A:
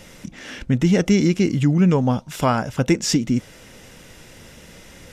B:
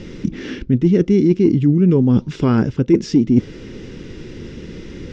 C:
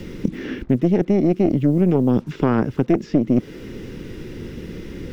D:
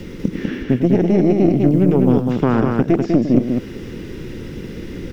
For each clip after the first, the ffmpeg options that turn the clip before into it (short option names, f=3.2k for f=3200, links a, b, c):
-af "lowpass=f=5.4k:w=0.5412,lowpass=f=5.4k:w=1.3066,lowshelf=f=500:t=q:w=3:g=9,areverse,acompressor=threshold=-13dB:ratio=10,areverse,volume=3dB"
-filter_complex "[0:a]acrusher=bits=7:mix=0:aa=0.5,aeval=exprs='0.891*(cos(1*acos(clip(val(0)/0.891,-1,1)))-cos(1*PI/2))+0.251*(cos(4*acos(clip(val(0)/0.891,-1,1)))-cos(4*PI/2))+0.0794*(cos(6*acos(clip(val(0)/0.891,-1,1)))-cos(6*PI/2))':c=same,acrossover=split=150|2700[a][b][c];[a]acompressor=threshold=-30dB:ratio=4[d];[b]acompressor=threshold=-14dB:ratio=4[e];[c]acompressor=threshold=-52dB:ratio=4[f];[d][e][f]amix=inputs=3:normalize=0"
-af "aecho=1:1:102|198.3:0.316|0.631,volume=1.5dB"